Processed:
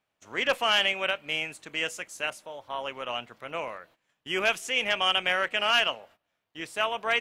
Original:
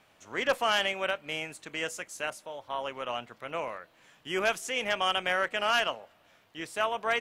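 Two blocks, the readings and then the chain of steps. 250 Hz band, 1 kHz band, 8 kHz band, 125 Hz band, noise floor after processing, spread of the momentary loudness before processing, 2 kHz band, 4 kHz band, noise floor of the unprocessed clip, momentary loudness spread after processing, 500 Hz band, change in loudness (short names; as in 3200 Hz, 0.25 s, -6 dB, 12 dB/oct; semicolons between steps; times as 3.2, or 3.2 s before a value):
0.0 dB, +0.5 dB, +0.5 dB, 0.0 dB, -81 dBFS, 12 LU, +3.5 dB, +6.0 dB, -64 dBFS, 14 LU, 0.0 dB, +3.5 dB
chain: gate -55 dBFS, range -18 dB; dynamic EQ 2700 Hz, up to +7 dB, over -44 dBFS, Q 1.7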